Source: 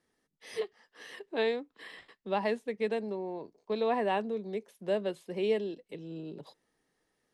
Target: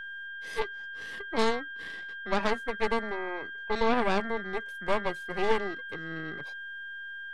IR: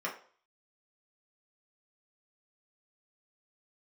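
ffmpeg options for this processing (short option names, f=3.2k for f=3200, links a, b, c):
-af "aeval=exprs='val(0)+0.0126*sin(2*PI*1600*n/s)':c=same,aeval=exprs='0.133*(cos(1*acos(clip(val(0)/0.133,-1,1)))-cos(1*PI/2))+0.0596*(cos(4*acos(clip(val(0)/0.133,-1,1)))-cos(4*PI/2))':c=same"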